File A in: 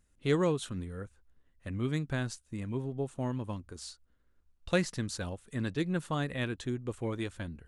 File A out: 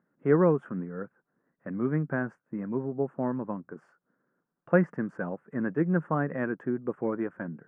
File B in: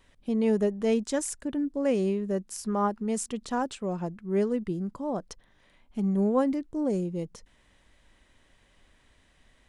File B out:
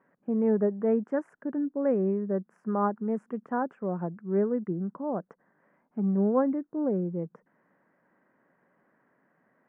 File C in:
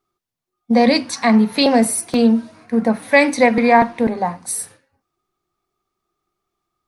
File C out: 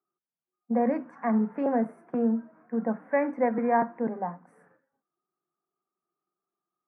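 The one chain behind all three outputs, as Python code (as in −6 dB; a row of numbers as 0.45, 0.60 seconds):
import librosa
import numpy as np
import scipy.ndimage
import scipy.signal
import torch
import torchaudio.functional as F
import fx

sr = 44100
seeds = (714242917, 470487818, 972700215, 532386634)

y = scipy.signal.sosfilt(scipy.signal.ellip(3, 1.0, 40, [160.0, 1600.0], 'bandpass', fs=sr, output='sos'), x)
y = y * 10.0 ** (-30 / 20.0) / np.sqrt(np.mean(np.square(y)))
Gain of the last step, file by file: +6.5, +0.5, −11.0 decibels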